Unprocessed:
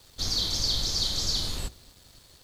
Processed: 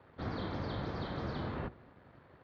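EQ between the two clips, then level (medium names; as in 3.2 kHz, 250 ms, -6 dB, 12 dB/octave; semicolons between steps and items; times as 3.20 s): high-pass 120 Hz 12 dB/octave; low-pass 1.8 kHz 24 dB/octave; +3.0 dB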